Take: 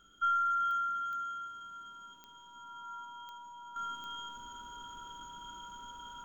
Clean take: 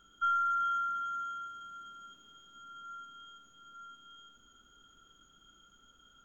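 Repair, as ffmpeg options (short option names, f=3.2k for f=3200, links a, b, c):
-af "adeclick=t=4,bandreject=f=960:w=30,asetnsamples=n=441:p=0,asendcmd='3.76 volume volume -11dB',volume=0dB"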